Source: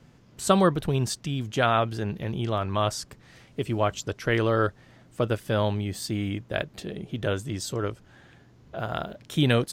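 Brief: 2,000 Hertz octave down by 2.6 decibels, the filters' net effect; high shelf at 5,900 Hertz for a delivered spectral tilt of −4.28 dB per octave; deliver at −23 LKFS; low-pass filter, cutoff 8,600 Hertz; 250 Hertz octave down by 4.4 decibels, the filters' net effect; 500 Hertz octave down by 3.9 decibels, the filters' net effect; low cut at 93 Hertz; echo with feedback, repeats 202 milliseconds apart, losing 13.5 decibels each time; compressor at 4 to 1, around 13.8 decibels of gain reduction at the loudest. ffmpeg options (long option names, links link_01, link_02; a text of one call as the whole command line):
ffmpeg -i in.wav -af "highpass=93,lowpass=8600,equalizer=frequency=250:width_type=o:gain=-5,equalizer=frequency=500:width_type=o:gain=-3.5,equalizer=frequency=2000:width_type=o:gain=-4,highshelf=frequency=5900:gain=6.5,acompressor=threshold=-36dB:ratio=4,aecho=1:1:202|404:0.211|0.0444,volume=16dB" out.wav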